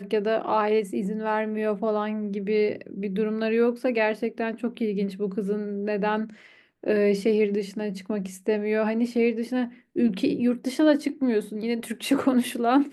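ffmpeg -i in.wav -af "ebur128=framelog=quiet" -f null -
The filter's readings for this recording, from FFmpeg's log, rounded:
Integrated loudness:
  I:         -25.6 LUFS
  Threshold: -35.7 LUFS
Loudness range:
  LRA:         2.0 LU
  Threshold: -45.9 LUFS
  LRA low:   -26.7 LUFS
  LRA high:  -24.7 LUFS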